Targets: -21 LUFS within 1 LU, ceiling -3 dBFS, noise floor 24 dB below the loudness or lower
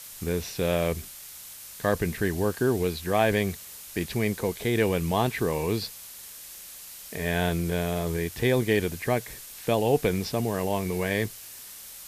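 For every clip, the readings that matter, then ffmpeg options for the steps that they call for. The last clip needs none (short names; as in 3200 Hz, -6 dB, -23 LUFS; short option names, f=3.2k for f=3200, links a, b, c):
noise floor -44 dBFS; noise floor target -51 dBFS; loudness -27.0 LUFS; peak -8.5 dBFS; loudness target -21.0 LUFS
-> -af "afftdn=nr=7:nf=-44"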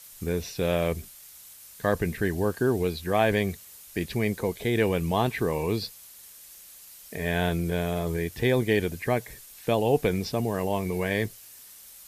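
noise floor -49 dBFS; noise floor target -52 dBFS
-> -af "afftdn=nr=6:nf=-49"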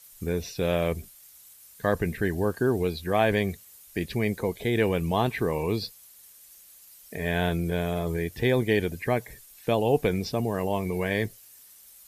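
noise floor -52 dBFS; loudness -27.5 LUFS; peak -8.5 dBFS; loudness target -21.0 LUFS
-> -af "volume=6.5dB,alimiter=limit=-3dB:level=0:latency=1"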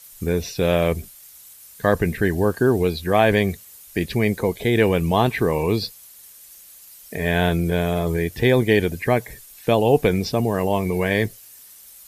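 loudness -21.0 LUFS; peak -3.0 dBFS; noise floor -46 dBFS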